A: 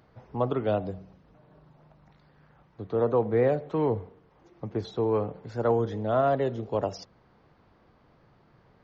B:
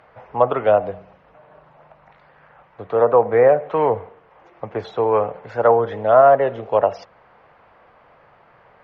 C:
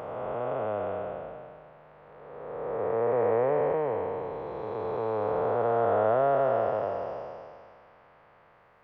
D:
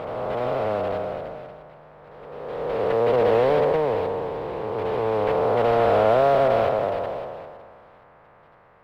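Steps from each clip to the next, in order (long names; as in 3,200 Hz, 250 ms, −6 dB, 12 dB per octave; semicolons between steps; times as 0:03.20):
flat-topped bell 1,200 Hz +14.5 dB 3 octaves; treble cut that deepens with the level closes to 1,900 Hz, closed at −9 dBFS; level −1 dB
spectrum smeared in time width 911 ms; level −4 dB
one scale factor per block 3 bits; high-frequency loss of the air 460 metres; level +7.5 dB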